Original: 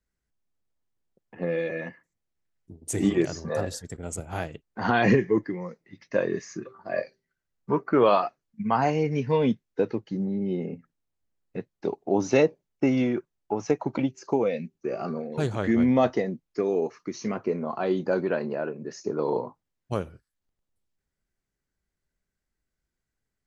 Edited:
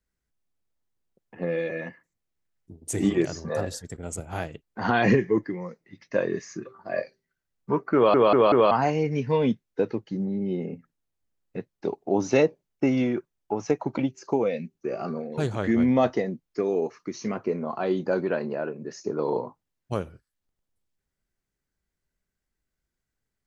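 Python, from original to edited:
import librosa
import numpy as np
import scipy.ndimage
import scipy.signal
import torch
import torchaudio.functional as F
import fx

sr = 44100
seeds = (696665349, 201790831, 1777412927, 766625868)

y = fx.edit(x, sr, fx.stutter_over(start_s=7.95, slice_s=0.19, count=4), tone=tone)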